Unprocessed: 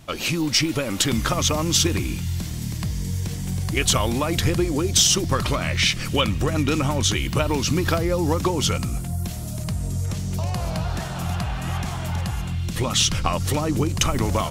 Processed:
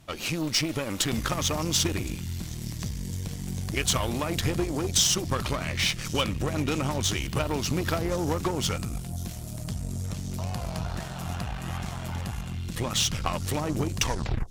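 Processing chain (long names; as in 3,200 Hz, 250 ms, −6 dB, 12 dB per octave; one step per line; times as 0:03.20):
turntable brake at the end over 0.52 s
delay with a high-pass on its return 1,061 ms, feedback 66%, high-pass 4,700 Hz, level −17.5 dB
harmonic generator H 3 −20 dB, 8 −24 dB, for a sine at −7.5 dBFS
level −4 dB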